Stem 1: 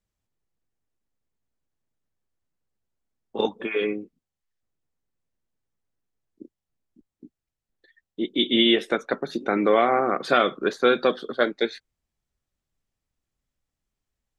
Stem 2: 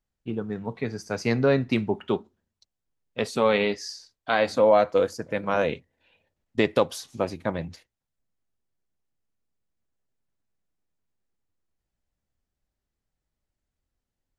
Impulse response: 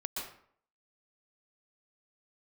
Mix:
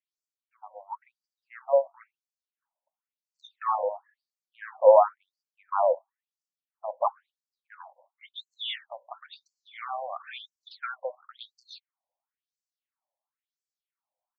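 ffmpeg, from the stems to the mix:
-filter_complex "[0:a]acompressor=threshold=-21dB:ratio=6,volume=-3.5dB[a];[1:a]lowpass=f=1.1k:w=0.5412,lowpass=f=1.1k:w=1.3066,acontrast=24,adelay=250,volume=1dB[b];[a][b]amix=inputs=2:normalize=0,afftfilt=real='re*between(b*sr/1024,720*pow(6200/720,0.5+0.5*sin(2*PI*0.97*pts/sr))/1.41,720*pow(6200/720,0.5+0.5*sin(2*PI*0.97*pts/sr))*1.41)':imag='im*between(b*sr/1024,720*pow(6200/720,0.5+0.5*sin(2*PI*0.97*pts/sr))/1.41,720*pow(6200/720,0.5+0.5*sin(2*PI*0.97*pts/sr))*1.41)':win_size=1024:overlap=0.75"

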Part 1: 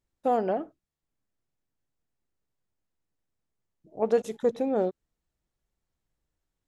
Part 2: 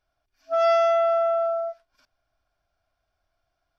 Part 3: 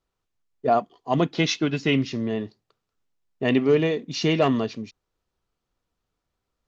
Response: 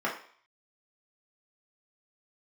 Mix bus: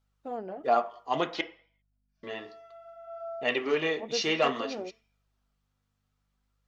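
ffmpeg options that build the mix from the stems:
-filter_complex "[0:a]aeval=exprs='val(0)+0.000631*(sin(2*PI*50*n/s)+sin(2*PI*2*50*n/s)/2+sin(2*PI*3*50*n/s)/3+sin(2*PI*4*50*n/s)/4+sin(2*PI*5*50*n/s)/5)':c=same,adynamicsmooth=sensitivity=6:basefreq=6k,volume=-8dB[a];[1:a]acompressor=threshold=-33dB:ratio=3,adelay=1750,volume=-2dB,afade=t=in:st=3.02:d=0.21:silence=0.354813[b];[2:a]highpass=f=1.2k:p=1,volume=2.5dB,asplit=3[c][d][e];[c]atrim=end=1.41,asetpts=PTS-STARTPTS,afade=t=out:st=1.406:d=0.004:c=hsin[f];[d]atrim=start=1.41:end=2.23,asetpts=PTS-STARTPTS,volume=0[g];[e]atrim=start=2.23,asetpts=PTS-STARTPTS,afade=t=in:d=0.004:c=hsin[h];[f][g][h]concat=n=3:v=0:a=1,asplit=3[i][j][k];[j]volume=-13.5dB[l];[k]apad=whole_len=244183[m];[b][m]sidechaincompress=threshold=-35dB:ratio=8:attack=9.8:release=1410[n];[3:a]atrim=start_sample=2205[o];[l][o]afir=irnorm=-1:irlink=0[p];[a][n][i][p]amix=inputs=4:normalize=0,flanger=delay=1.3:depth=7.4:regen=-39:speed=0.59:shape=sinusoidal"

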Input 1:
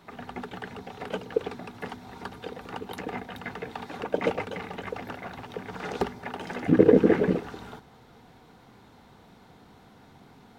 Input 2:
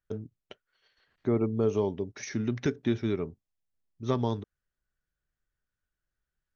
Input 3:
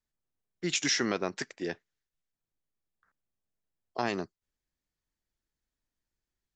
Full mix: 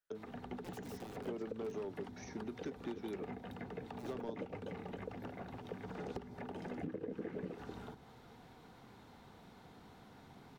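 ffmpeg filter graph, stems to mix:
-filter_complex "[0:a]acompressor=threshold=-26dB:ratio=10,adelay=150,volume=-4.5dB[a];[1:a]highpass=360,asoftclip=type=hard:threshold=-25dB,volume=-3dB[b];[2:a]aecho=1:1:6:0.51,aeval=exprs='(mod(12.6*val(0)+1,2)-1)/12.6':c=same,volume=-19.5dB[c];[a][b][c]amix=inputs=3:normalize=0,acrossover=split=290|650[d][e][f];[d]acompressor=threshold=-45dB:ratio=4[g];[e]acompressor=threshold=-46dB:ratio=4[h];[f]acompressor=threshold=-55dB:ratio=4[i];[g][h][i]amix=inputs=3:normalize=0"

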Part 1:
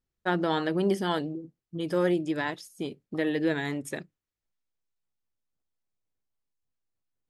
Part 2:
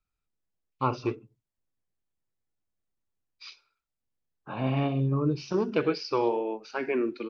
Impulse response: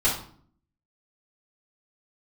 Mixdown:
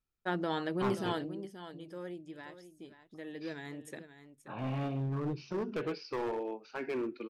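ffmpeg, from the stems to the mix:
-filter_complex "[0:a]afade=t=out:st=1.3:d=0.56:silence=0.281838,afade=t=in:st=3.19:d=0.73:silence=0.446684,asplit=2[a][b];[b]volume=-12dB[c];[1:a]bass=f=250:g=0,treble=f=4k:g=-7,volume=24dB,asoftclip=hard,volume=-24dB,volume=-6.5dB[d];[c]aecho=0:1:530:1[e];[a][d][e]amix=inputs=3:normalize=0"

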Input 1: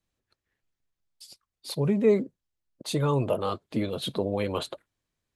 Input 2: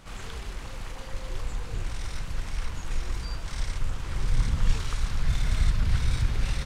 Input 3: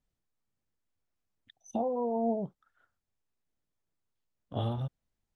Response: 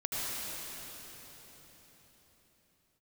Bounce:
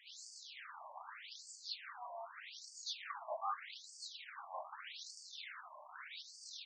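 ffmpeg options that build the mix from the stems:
-filter_complex "[0:a]aecho=1:1:2.6:0.8,asoftclip=type=tanh:threshold=-18.5dB,volume=-8dB[a];[1:a]highpass=f=150:p=1,volume=-1.5dB[b];[2:a]lowshelf=f=83:g=-2.5,alimiter=level_in=5dB:limit=-24dB:level=0:latency=1:release=38,volume=-5dB,adelay=50,volume=-6dB[c];[b][c]amix=inputs=2:normalize=0,alimiter=level_in=7dB:limit=-24dB:level=0:latency=1:release=60,volume=-7dB,volume=0dB[d];[a][d]amix=inputs=2:normalize=0,afftfilt=real='re*between(b*sr/1024,780*pow(6400/780,0.5+0.5*sin(2*PI*0.82*pts/sr))/1.41,780*pow(6400/780,0.5+0.5*sin(2*PI*0.82*pts/sr))*1.41)':imag='im*between(b*sr/1024,780*pow(6400/780,0.5+0.5*sin(2*PI*0.82*pts/sr))/1.41,780*pow(6400/780,0.5+0.5*sin(2*PI*0.82*pts/sr))*1.41)':win_size=1024:overlap=0.75"

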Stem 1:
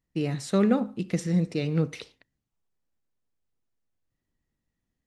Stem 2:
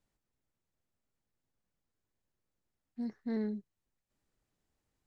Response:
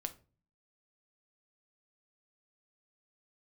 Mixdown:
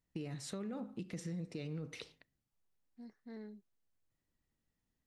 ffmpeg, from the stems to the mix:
-filter_complex "[0:a]alimiter=limit=-21.5dB:level=0:latency=1:release=14,volume=-5.5dB,asplit=2[a][b];[b]volume=-15dB[c];[1:a]lowshelf=f=400:g=-7,volume=-9.5dB[d];[2:a]atrim=start_sample=2205[e];[c][e]afir=irnorm=-1:irlink=0[f];[a][d][f]amix=inputs=3:normalize=0,acompressor=threshold=-40dB:ratio=5"

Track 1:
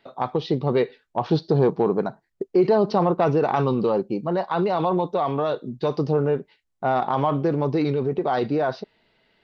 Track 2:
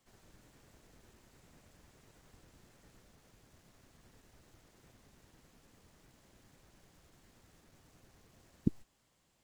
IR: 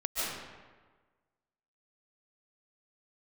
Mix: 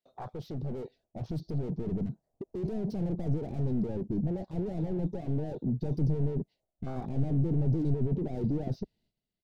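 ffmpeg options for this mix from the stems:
-filter_complex "[0:a]firequalizer=gain_entry='entry(700,0);entry(1200,-8);entry(6000,15)':delay=0.05:min_phase=1,asoftclip=type=hard:threshold=-31.5dB,asubboost=boost=6.5:cutoff=250,volume=-4.5dB,asplit=2[a][b];[1:a]lowpass=f=660:t=q:w=6.4,volume=-4.5dB[c];[b]apad=whole_len=415928[d];[c][d]sidechaincompress=threshold=-32dB:ratio=8:attack=16:release=599[e];[a][e]amix=inputs=2:normalize=0,agate=range=-11dB:threshold=-59dB:ratio=16:detection=peak,afwtdn=0.02"

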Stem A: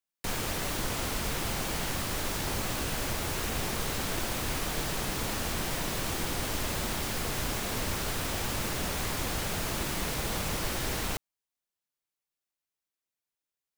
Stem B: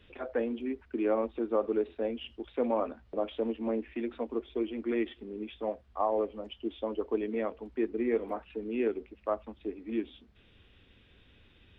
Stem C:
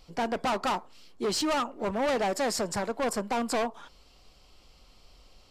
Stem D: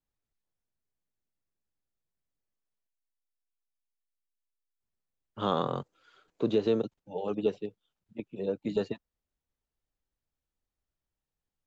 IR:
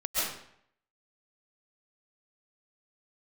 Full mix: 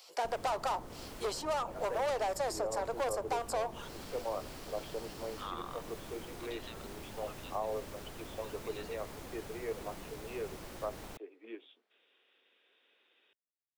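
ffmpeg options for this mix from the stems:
-filter_complex "[0:a]tiltshelf=f=830:g=5,volume=-13.5dB[a];[1:a]highpass=f=410:w=0.5412,highpass=f=410:w=1.3066,adelay=1550,volume=-6dB[b];[2:a]highpass=f=480:w=0.5412,highpass=f=480:w=1.3066,highshelf=f=4.3k:g=10.5,volume=0.5dB[c];[3:a]highpass=f=1.1k:w=0.5412,highpass=f=1.1k:w=1.3066,volume=-3dB[d];[a][b][c][d]amix=inputs=4:normalize=0,acrossover=split=240|1100[e][f][g];[e]acompressor=threshold=-49dB:ratio=4[h];[f]acompressor=threshold=-31dB:ratio=4[i];[g]acompressor=threshold=-45dB:ratio=4[j];[h][i][j]amix=inputs=3:normalize=0"

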